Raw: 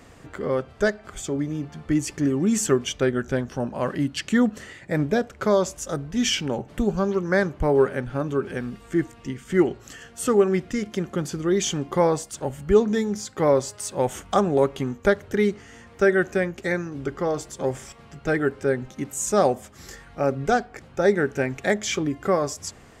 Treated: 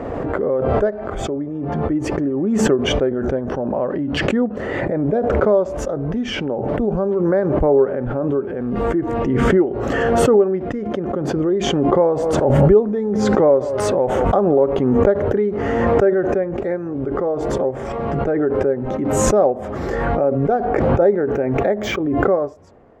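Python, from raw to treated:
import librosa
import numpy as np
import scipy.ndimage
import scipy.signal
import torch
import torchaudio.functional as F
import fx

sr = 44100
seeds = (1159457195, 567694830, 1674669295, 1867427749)

y = fx.echo_single(x, sr, ms=176, db=-23.0, at=(12.22, 14.56), fade=0.02)
y = fx.resample_bad(y, sr, factor=2, down='filtered', up='hold', at=(21.29, 22.34))
y = fx.curve_eq(y, sr, hz=(160.0, 270.0, 570.0, 8300.0), db=(0, 5, 10, -27))
y = fx.pre_swell(y, sr, db_per_s=21.0)
y = y * librosa.db_to_amplitude(-4.5)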